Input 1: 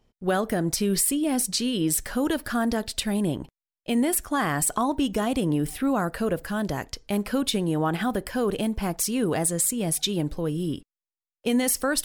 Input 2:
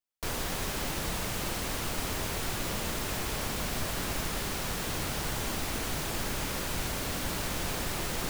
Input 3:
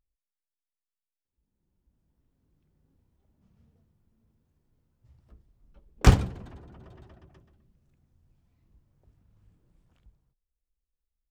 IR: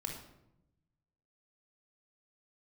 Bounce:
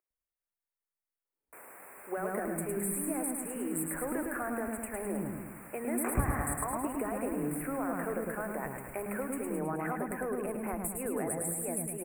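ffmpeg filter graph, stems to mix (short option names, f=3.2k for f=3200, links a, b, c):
-filter_complex "[0:a]acrusher=bits=9:dc=4:mix=0:aa=0.000001,adelay=1850,volume=-3.5dB,asplit=2[a][b];[b]volume=-10dB[c];[1:a]highpass=460,alimiter=level_in=3dB:limit=-24dB:level=0:latency=1,volume=-3dB,adelay=1300,volume=-12dB[d];[2:a]volume=0.5dB,asplit=2[e][f];[f]volume=-15dB[g];[a][e]amix=inputs=2:normalize=0,highpass=f=360:w=0.5412,highpass=f=360:w=1.3066,acompressor=threshold=-33dB:ratio=6,volume=0dB[h];[c][g]amix=inputs=2:normalize=0,aecho=0:1:106|212|318|424|530|636|742|848|954:1|0.59|0.348|0.205|0.121|0.0715|0.0422|0.0249|0.0147[i];[d][h][i]amix=inputs=3:normalize=0,asuperstop=centerf=4500:order=12:qfactor=0.81,equalizer=f=4k:t=o:w=0.91:g=-5"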